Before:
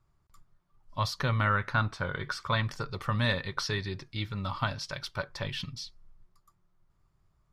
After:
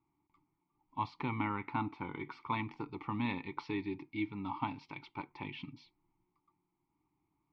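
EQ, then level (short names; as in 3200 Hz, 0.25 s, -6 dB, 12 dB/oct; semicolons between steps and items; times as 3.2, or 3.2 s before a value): vowel filter u; LPF 3400 Hz 12 dB/oct; +10.5 dB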